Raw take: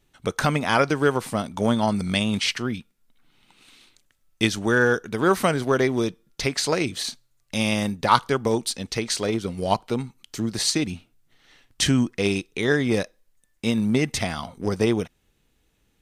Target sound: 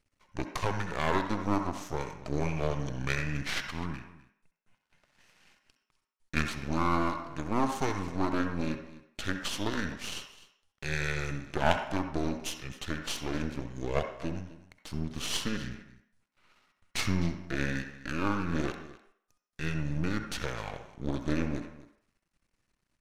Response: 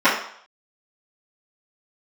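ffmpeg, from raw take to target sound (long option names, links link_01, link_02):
-filter_complex "[0:a]aecho=1:1:177:0.133,aeval=exprs='max(val(0),0)':channel_layout=same,asetrate=30694,aresample=44100,asplit=2[link_01][link_02];[1:a]atrim=start_sample=2205,highshelf=frequency=5800:gain=10.5,adelay=60[link_03];[link_02][link_03]afir=irnorm=-1:irlink=0,volume=-31dB[link_04];[link_01][link_04]amix=inputs=2:normalize=0,volume=-6dB"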